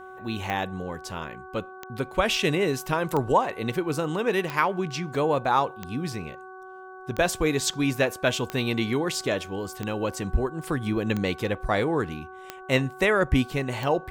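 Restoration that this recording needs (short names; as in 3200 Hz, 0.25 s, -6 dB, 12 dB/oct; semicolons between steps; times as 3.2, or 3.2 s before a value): de-click; de-hum 374.9 Hz, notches 4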